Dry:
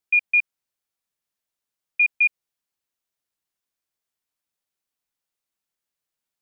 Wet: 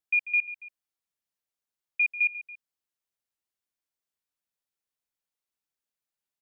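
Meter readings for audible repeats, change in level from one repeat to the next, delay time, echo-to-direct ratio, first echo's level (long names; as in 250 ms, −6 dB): 2, −6.0 dB, 141 ms, −13.5 dB, −14.5 dB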